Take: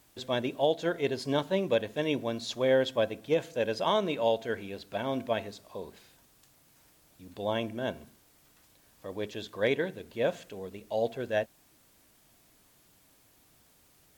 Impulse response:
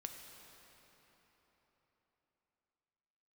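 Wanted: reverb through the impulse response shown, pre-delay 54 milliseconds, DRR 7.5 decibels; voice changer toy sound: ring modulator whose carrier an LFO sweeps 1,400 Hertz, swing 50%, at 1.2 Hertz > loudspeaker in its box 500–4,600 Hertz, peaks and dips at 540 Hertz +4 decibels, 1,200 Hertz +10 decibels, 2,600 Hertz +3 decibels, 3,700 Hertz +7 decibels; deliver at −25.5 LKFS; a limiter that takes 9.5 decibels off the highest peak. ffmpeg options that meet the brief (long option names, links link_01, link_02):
-filter_complex "[0:a]alimiter=level_in=0.5dB:limit=-24dB:level=0:latency=1,volume=-0.5dB,asplit=2[link_01][link_02];[1:a]atrim=start_sample=2205,adelay=54[link_03];[link_02][link_03]afir=irnorm=-1:irlink=0,volume=-4.5dB[link_04];[link_01][link_04]amix=inputs=2:normalize=0,aeval=exprs='val(0)*sin(2*PI*1400*n/s+1400*0.5/1.2*sin(2*PI*1.2*n/s))':channel_layout=same,highpass=500,equalizer=frequency=540:width_type=q:width=4:gain=4,equalizer=frequency=1200:width_type=q:width=4:gain=10,equalizer=frequency=2600:width_type=q:width=4:gain=3,equalizer=frequency=3700:width_type=q:width=4:gain=7,lowpass=frequency=4600:width=0.5412,lowpass=frequency=4600:width=1.3066,volume=8dB"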